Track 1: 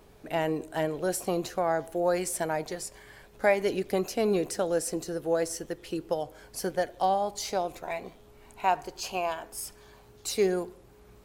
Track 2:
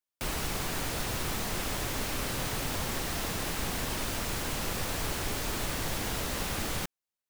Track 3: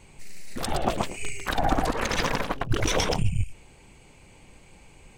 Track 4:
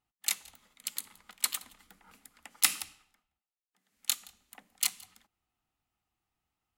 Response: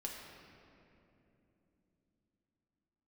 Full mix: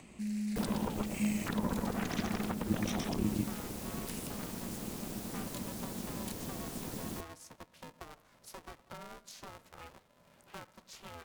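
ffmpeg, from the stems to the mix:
-filter_complex "[0:a]acompressor=threshold=-30dB:ratio=6,aeval=exprs='val(0)*sgn(sin(2*PI*380*n/s))':channel_layout=same,adelay=1900,volume=-12dB[link_01];[1:a]equalizer=frequency=2000:width=0.42:gain=-10,adelay=350,volume=-4dB[link_02];[2:a]acompressor=threshold=-24dB:ratio=6,volume=-1.5dB[link_03];[3:a]alimiter=limit=-17dB:level=0:latency=1,adelay=1450,volume=-9.5dB[link_04];[link_01][link_02][link_03][link_04]amix=inputs=4:normalize=0,acrossover=split=300[link_05][link_06];[link_06]acompressor=threshold=-36dB:ratio=3[link_07];[link_05][link_07]amix=inputs=2:normalize=0,aeval=exprs='val(0)*sin(2*PI*210*n/s)':channel_layout=same,acompressor=mode=upward:threshold=-55dB:ratio=2.5"

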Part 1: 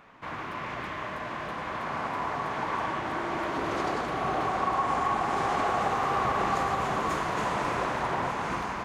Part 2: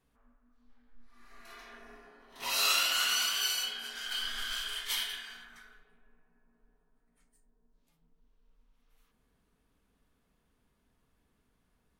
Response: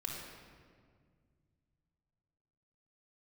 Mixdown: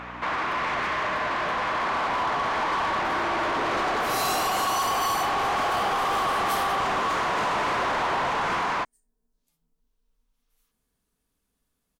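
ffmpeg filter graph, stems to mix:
-filter_complex "[0:a]aeval=exprs='val(0)+0.00447*(sin(2*PI*60*n/s)+sin(2*PI*2*60*n/s)/2+sin(2*PI*3*60*n/s)/3+sin(2*PI*4*60*n/s)/4+sin(2*PI*5*60*n/s)/5)':channel_layout=same,asplit=2[link_01][link_02];[link_02]highpass=frequency=720:poles=1,volume=24dB,asoftclip=type=tanh:threshold=-14.5dB[link_03];[link_01][link_03]amix=inputs=2:normalize=0,lowpass=frequency=3200:poles=1,volume=-6dB,volume=0.5dB[link_04];[1:a]bass=frequency=250:gain=0,treble=frequency=4000:gain=11,adelay=1600,volume=-5.5dB[link_05];[link_04][link_05]amix=inputs=2:normalize=0,acompressor=threshold=-31dB:ratio=1.5"

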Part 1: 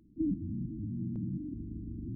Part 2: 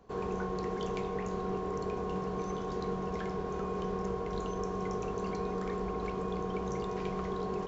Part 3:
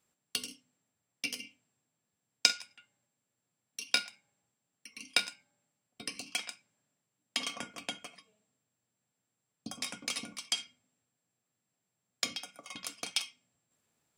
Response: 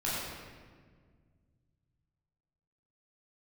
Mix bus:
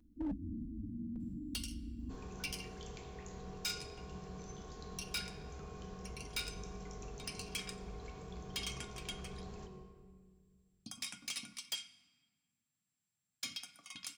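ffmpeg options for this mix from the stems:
-filter_complex "[0:a]equalizer=frequency=180:width=2.9:gain=-8.5,aecho=1:1:4.1:0.82,volume=-3dB,asplit=2[link_01][link_02];[link_02]volume=-18.5dB[link_03];[1:a]crystalizer=i=3.5:c=0,lowshelf=frequency=370:gain=5.5,adelay=2000,volume=-14.5dB,asplit=2[link_04][link_05];[link_05]volume=-10dB[link_06];[2:a]equalizer=frequency=510:width=1.4:gain=-12,adelay=1200,volume=-3dB,asplit=2[link_07][link_08];[link_08]volume=-23.5dB[link_09];[3:a]atrim=start_sample=2205[link_10];[link_03][link_06][link_09]amix=inputs=3:normalize=0[link_11];[link_11][link_10]afir=irnorm=-1:irlink=0[link_12];[link_01][link_04][link_07][link_12]amix=inputs=4:normalize=0,equalizer=frequency=570:width=0.35:gain=-6,asoftclip=type=hard:threshold=-33.5dB"

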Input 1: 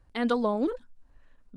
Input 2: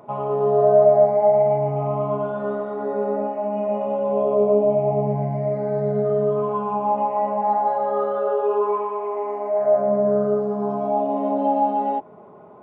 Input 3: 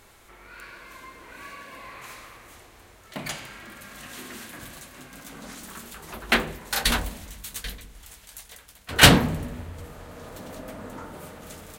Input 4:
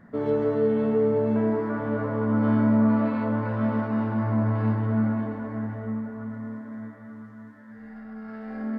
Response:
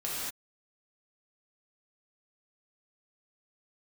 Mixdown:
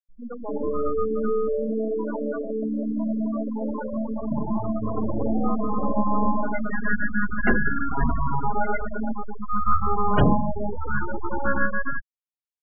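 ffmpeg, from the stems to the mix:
-filter_complex "[0:a]dynaudnorm=framelen=100:gausssize=3:maxgain=4.5dB,volume=-13.5dB[link_01];[1:a]aeval=exprs='abs(val(0))':channel_layout=same,volume=-3.5dB,afade=type=in:start_time=4.79:duration=0.56:silence=0.266073[link_02];[2:a]tiltshelf=frequency=930:gain=7.5,dynaudnorm=framelen=610:gausssize=7:maxgain=8dB,adelay=1150,volume=-11dB[link_03];[3:a]acrossover=split=230 2300:gain=0.158 1 0.0891[link_04][link_05][link_06];[link_04][link_05][link_06]amix=inputs=3:normalize=0,alimiter=level_in=0.5dB:limit=-24dB:level=0:latency=1:release=69,volume=-0.5dB,adelay=350,volume=1.5dB[link_07];[link_01][link_02][link_03][link_07]amix=inputs=4:normalize=0,afftfilt=real='re*gte(hypot(re,im),0.112)':imag='im*gte(hypot(re,im),0.112)':win_size=1024:overlap=0.75,dynaudnorm=framelen=480:gausssize=3:maxgain=5dB"

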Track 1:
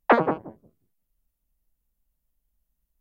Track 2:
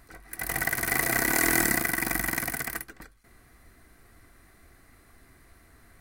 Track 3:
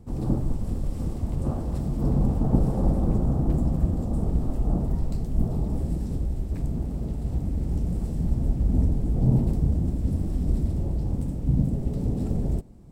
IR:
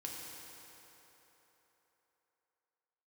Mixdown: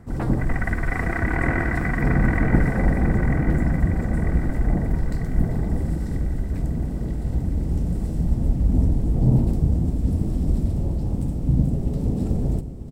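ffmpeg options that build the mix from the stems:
-filter_complex "[0:a]adelay=100,volume=-17dB[link_01];[1:a]lowpass=frequency=2000:width=0.5412,lowpass=frequency=2000:width=1.3066,volume=1dB,asplit=2[link_02][link_03];[link_03]volume=-5.5dB[link_04];[2:a]volume=1.5dB,asplit=3[link_05][link_06][link_07];[link_06]volume=-10.5dB[link_08];[link_07]volume=-13dB[link_09];[3:a]atrim=start_sample=2205[link_10];[link_08][link_10]afir=irnorm=-1:irlink=0[link_11];[link_04][link_09]amix=inputs=2:normalize=0,aecho=0:1:945|1890|2835|3780|4725|5670|6615|7560:1|0.54|0.292|0.157|0.085|0.0459|0.0248|0.0134[link_12];[link_01][link_02][link_05][link_11][link_12]amix=inputs=5:normalize=0"

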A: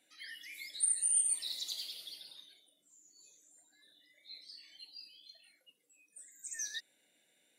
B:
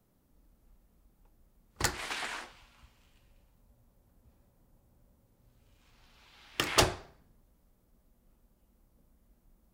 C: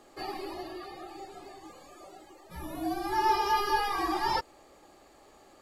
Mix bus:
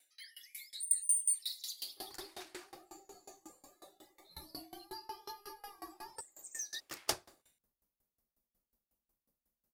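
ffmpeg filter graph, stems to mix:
ffmpeg -i stem1.wav -i stem2.wav -i stem3.wav -filter_complex "[0:a]highpass=frequency=590:poles=1,asoftclip=type=tanh:threshold=-28.5dB,volume=1.5dB[link_01];[1:a]adelay=300,volume=-9.5dB[link_02];[2:a]acompressor=threshold=-39dB:ratio=3,equalizer=frequency=3000:width=0.32:gain=-9.5,adelay=1800,volume=0.5dB[link_03];[link_01][link_02][link_03]amix=inputs=3:normalize=0,lowshelf=frequency=210:gain=-10.5,aexciter=amount=2.6:drive=4.1:freq=4500,aeval=exprs='val(0)*pow(10,-25*if(lt(mod(5.5*n/s,1),2*abs(5.5)/1000),1-mod(5.5*n/s,1)/(2*abs(5.5)/1000),(mod(5.5*n/s,1)-2*abs(5.5)/1000)/(1-2*abs(5.5)/1000))/20)':channel_layout=same" out.wav

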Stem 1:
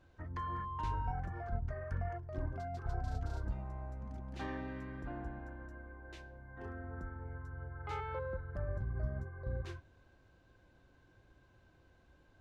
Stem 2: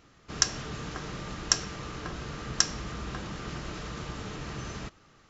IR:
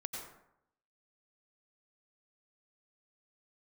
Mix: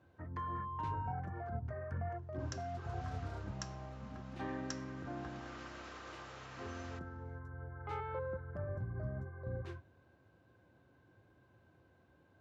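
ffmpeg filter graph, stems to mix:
-filter_complex "[0:a]highpass=frequency=85:width=0.5412,highpass=frequency=85:width=1.3066,volume=1dB[link_01];[1:a]highpass=770,dynaudnorm=framelen=150:gausssize=7:maxgain=13dB,adelay=2100,volume=-18dB[link_02];[link_01][link_02]amix=inputs=2:normalize=0,highshelf=frequency=2500:gain=-10"

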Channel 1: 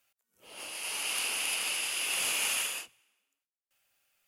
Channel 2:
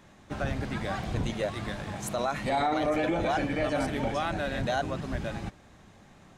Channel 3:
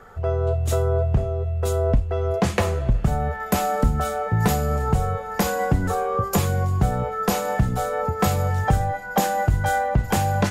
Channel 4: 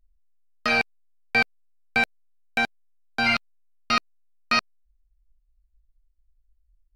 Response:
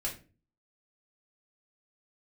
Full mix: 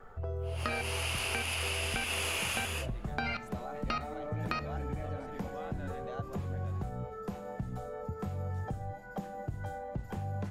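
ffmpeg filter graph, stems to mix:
-filter_complex "[0:a]dynaudnorm=framelen=100:gausssize=11:maxgain=11dB,volume=-4dB[link_01];[1:a]adelay=1400,volume=-15.5dB[link_02];[2:a]acrossover=split=150|490|3700|7700[link_03][link_04][link_05][link_06][link_07];[link_03]acompressor=threshold=-30dB:ratio=4[link_08];[link_04]acompressor=threshold=-36dB:ratio=4[link_09];[link_05]acompressor=threshold=-41dB:ratio=4[link_10];[link_06]acompressor=threshold=-55dB:ratio=4[link_11];[link_07]acompressor=threshold=-53dB:ratio=4[link_12];[link_08][link_09][link_10][link_11][link_12]amix=inputs=5:normalize=0,flanger=delay=6.2:depth=4.1:regen=-83:speed=1.3:shape=triangular,volume=-2.5dB[link_13];[3:a]acompressor=threshold=-27dB:ratio=6,volume=0dB,asplit=2[link_14][link_15];[link_15]volume=-12dB[link_16];[4:a]atrim=start_sample=2205[link_17];[link_16][link_17]afir=irnorm=-1:irlink=0[link_18];[link_01][link_02][link_13][link_14][link_18]amix=inputs=5:normalize=0,highshelf=frequency=3300:gain=-11,acompressor=threshold=-30dB:ratio=6"

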